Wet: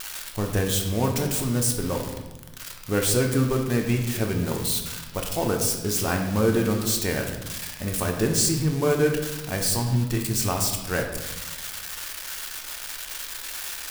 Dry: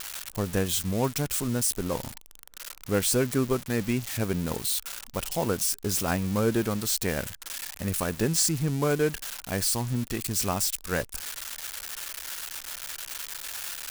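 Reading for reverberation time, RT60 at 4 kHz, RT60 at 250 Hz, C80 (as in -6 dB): 1.1 s, 0.85 s, 1.5 s, 8.0 dB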